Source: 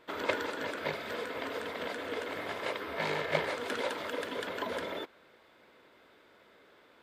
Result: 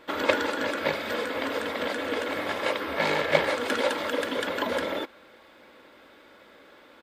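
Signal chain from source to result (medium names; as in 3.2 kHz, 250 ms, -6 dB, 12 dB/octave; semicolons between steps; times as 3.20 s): comb 3.6 ms, depth 36%; trim +7.5 dB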